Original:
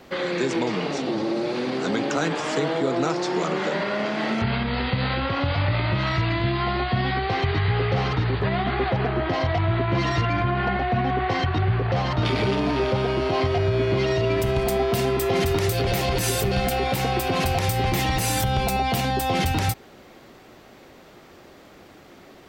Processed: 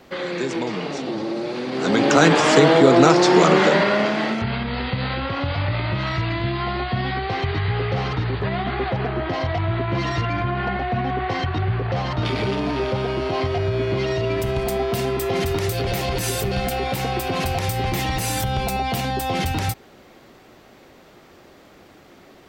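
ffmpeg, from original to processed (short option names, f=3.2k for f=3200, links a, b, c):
-af "volume=10.5dB,afade=t=in:st=1.7:d=0.55:silence=0.266073,afade=t=out:st=3.53:d=0.87:silence=0.281838"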